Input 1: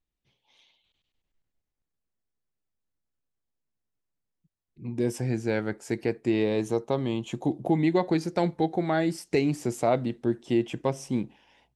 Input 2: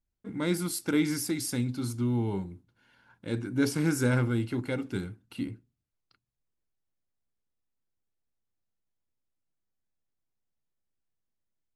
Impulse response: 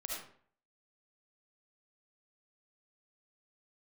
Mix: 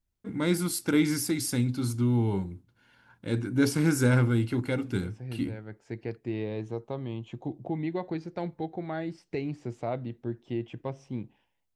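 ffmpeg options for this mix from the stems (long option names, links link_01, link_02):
-filter_complex "[0:a]agate=range=-33dB:threshold=-50dB:ratio=3:detection=peak,lowpass=3800,equalizer=frequency=110:width_type=o:width=0.47:gain=6,volume=-9dB[link_01];[1:a]volume=2dB,asplit=2[link_02][link_03];[link_03]apad=whole_len=518503[link_04];[link_01][link_04]sidechaincompress=threshold=-36dB:ratio=4:attack=8.4:release=573[link_05];[link_05][link_02]amix=inputs=2:normalize=0,equalizer=frequency=92:width=1.1:gain=3"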